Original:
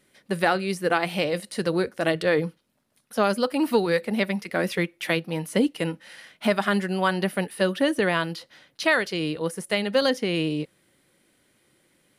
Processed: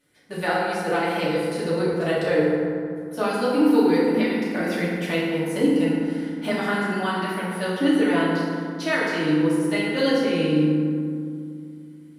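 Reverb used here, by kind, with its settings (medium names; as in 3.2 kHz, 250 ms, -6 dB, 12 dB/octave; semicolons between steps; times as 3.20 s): FDN reverb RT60 2.3 s, low-frequency decay 1.45×, high-frequency decay 0.45×, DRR -8.5 dB; trim -8.5 dB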